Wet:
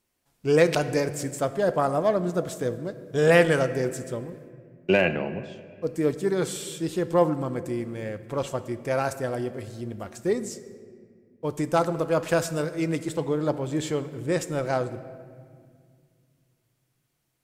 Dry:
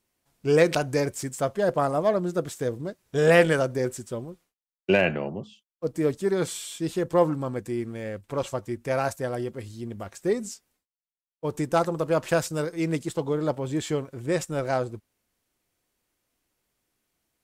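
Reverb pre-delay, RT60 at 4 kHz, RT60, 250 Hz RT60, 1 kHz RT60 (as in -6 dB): 4 ms, 1.3 s, 2.0 s, 3.0 s, 1.8 s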